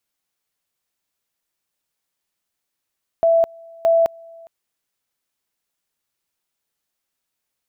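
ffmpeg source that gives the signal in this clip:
-f lavfi -i "aevalsrc='pow(10,(-11.5-27*gte(mod(t,0.62),0.21))/20)*sin(2*PI*664*t)':d=1.24:s=44100"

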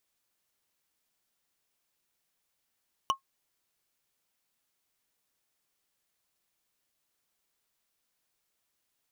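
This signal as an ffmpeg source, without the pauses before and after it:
-f lavfi -i "aevalsrc='0.119*pow(10,-3*t/0.11)*sin(2*PI*1080*t)+0.075*pow(10,-3*t/0.033)*sin(2*PI*2977.6*t)+0.0473*pow(10,-3*t/0.015)*sin(2*PI*5836.3*t)+0.0299*pow(10,-3*t/0.008)*sin(2*PI*9647.6*t)+0.0188*pow(10,-3*t/0.005)*sin(2*PI*14407.2*t)':d=0.45:s=44100"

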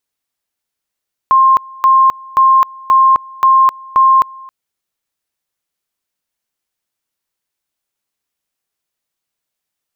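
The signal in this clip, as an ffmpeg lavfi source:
-f lavfi -i "aevalsrc='pow(10,(-5-25*gte(mod(t,0.53),0.26))/20)*sin(2*PI*1060*t)':d=3.18:s=44100"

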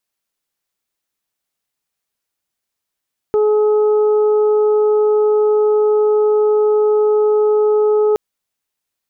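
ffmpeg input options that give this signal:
-f lavfi -i "aevalsrc='0.299*sin(2*PI*424*t)+0.0473*sin(2*PI*848*t)+0.0335*sin(2*PI*1272*t)':d=4.82:s=44100"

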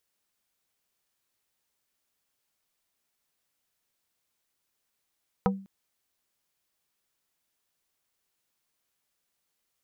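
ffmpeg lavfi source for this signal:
-f lavfi -i "aevalsrc='0.1*pow(10,-3*t/0.41)*sin(2*PI*194*t)+0.0891*pow(10,-3*t/0.137)*sin(2*PI*485*t)+0.0794*pow(10,-3*t/0.078)*sin(2*PI*776*t)+0.0708*pow(10,-3*t/0.059)*sin(2*PI*970*t)+0.0631*pow(10,-3*t/0.043)*sin(2*PI*1261*t)':d=0.2:s=44100"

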